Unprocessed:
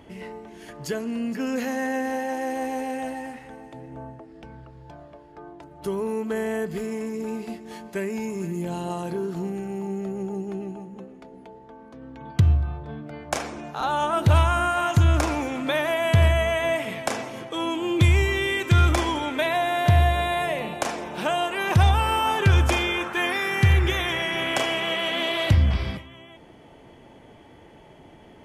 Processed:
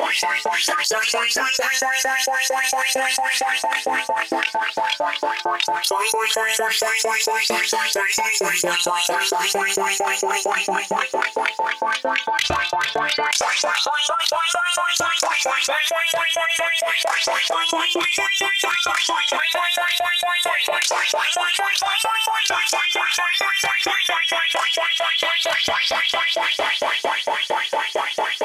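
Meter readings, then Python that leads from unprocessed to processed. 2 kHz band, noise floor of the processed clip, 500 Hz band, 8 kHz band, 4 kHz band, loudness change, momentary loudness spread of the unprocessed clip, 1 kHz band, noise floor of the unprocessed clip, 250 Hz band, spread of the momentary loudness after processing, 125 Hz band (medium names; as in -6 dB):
+10.5 dB, -29 dBFS, +3.0 dB, +16.5 dB, +12.5 dB, +5.0 dB, 18 LU, +7.5 dB, -49 dBFS, -7.5 dB, 3 LU, -25.5 dB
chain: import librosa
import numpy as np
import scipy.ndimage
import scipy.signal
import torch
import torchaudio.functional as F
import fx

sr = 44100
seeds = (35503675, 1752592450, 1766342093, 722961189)

y = fx.notch(x, sr, hz=720.0, q=12.0)
y = fx.dynamic_eq(y, sr, hz=220.0, q=3.6, threshold_db=-44.0, ratio=4.0, max_db=-7)
y = fx.rider(y, sr, range_db=3, speed_s=0.5)
y = fx.chorus_voices(y, sr, voices=6, hz=0.24, base_ms=25, depth_ms=3.6, mix_pct=65)
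y = fx.echo_heads(y, sr, ms=141, heads='first and third', feedback_pct=60, wet_db=-19.5)
y = fx.filter_lfo_highpass(y, sr, shape='saw_up', hz=4.4, low_hz=520.0, high_hz=6600.0, q=4.0)
y = fx.env_flatten(y, sr, amount_pct=100)
y = F.gain(torch.from_numpy(y), -7.5).numpy()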